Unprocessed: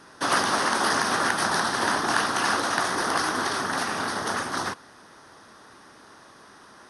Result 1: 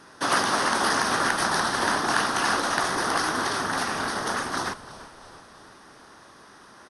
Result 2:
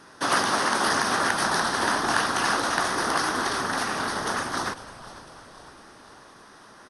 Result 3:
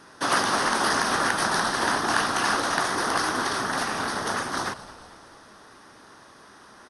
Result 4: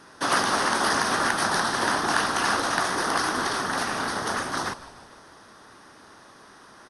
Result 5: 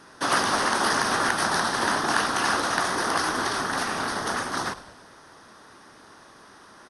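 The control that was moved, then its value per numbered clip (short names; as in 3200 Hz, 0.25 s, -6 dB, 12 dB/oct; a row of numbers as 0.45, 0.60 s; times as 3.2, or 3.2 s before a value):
frequency-shifting echo, time: 0.335, 0.501, 0.221, 0.151, 0.101 s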